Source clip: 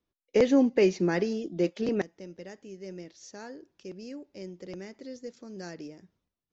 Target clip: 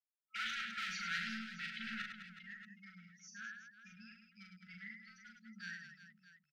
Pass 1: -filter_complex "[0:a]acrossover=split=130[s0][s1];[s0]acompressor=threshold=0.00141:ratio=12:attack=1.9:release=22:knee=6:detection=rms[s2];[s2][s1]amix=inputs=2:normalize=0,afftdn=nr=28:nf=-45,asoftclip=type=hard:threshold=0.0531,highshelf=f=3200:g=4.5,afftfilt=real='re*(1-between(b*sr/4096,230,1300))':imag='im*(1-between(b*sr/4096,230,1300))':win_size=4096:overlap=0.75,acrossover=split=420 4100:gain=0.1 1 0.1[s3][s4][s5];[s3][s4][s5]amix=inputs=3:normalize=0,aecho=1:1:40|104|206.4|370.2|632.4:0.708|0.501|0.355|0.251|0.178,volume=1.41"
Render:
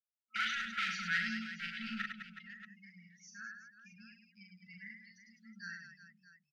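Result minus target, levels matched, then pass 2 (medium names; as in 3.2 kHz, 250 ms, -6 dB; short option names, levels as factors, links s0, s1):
hard clipper: distortion -5 dB
-filter_complex "[0:a]acrossover=split=130[s0][s1];[s0]acompressor=threshold=0.00141:ratio=12:attack=1.9:release=22:knee=6:detection=rms[s2];[s2][s1]amix=inputs=2:normalize=0,afftdn=nr=28:nf=-45,asoftclip=type=hard:threshold=0.0188,highshelf=f=3200:g=4.5,afftfilt=real='re*(1-between(b*sr/4096,230,1300))':imag='im*(1-between(b*sr/4096,230,1300))':win_size=4096:overlap=0.75,acrossover=split=420 4100:gain=0.1 1 0.1[s3][s4][s5];[s3][s4][s5]amix=inputs=3:normalize=0,aecho=1:1:40|104|206.4|370.2|632.4:0.708|0.501|0.355|0.251|0.178,volume=1.41"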